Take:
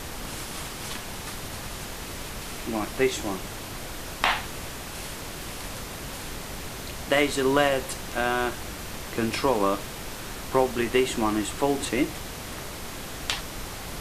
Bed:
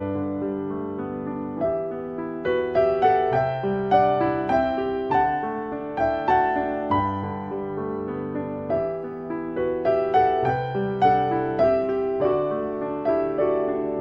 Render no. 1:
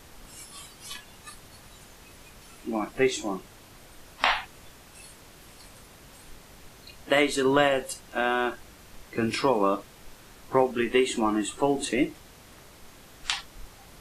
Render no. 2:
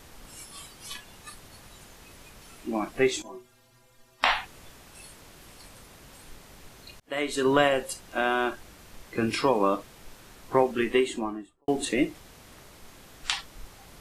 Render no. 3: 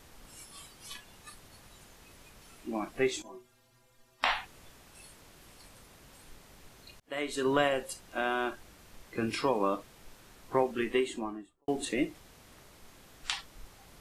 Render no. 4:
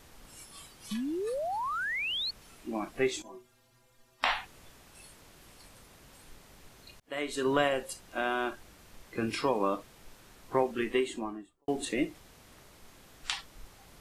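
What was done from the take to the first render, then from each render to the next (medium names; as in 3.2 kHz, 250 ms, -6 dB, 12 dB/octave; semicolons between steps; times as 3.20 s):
noise print and reduce 14 dB
3.22–4.23 s: inharmonic resonator 120 Hz, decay 0.28 s, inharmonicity 0.008; 7.00–7.47 s: fade in linear; 10.84–11.68 s: studio fade out
trim -5.5 dB
0.91–2.31 s: painted sound rise 200–4500 Hz -33 dBFS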